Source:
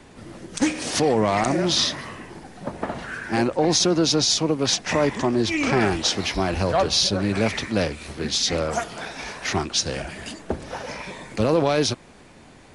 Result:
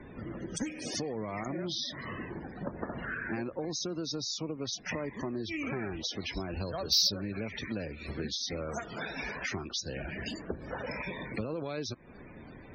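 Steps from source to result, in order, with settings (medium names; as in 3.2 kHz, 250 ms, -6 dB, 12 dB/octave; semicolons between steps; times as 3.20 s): loudest bins only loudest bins 64; peaking EQ 800 Hz -6.5 dB 0.78 oct; compression 8:1, threshold -34 dBFS, peak gain reduction 17.5 dB; 6.37–7.12 s: resonant high shelf 3.4 kHz +10 dB, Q 1.5; Chebyshev shaper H 3 -19 dB, 7 -44 dB, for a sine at -13.5 dBFS; saturation -23.5 dBFS, distortion -15 dB; trim +5 dB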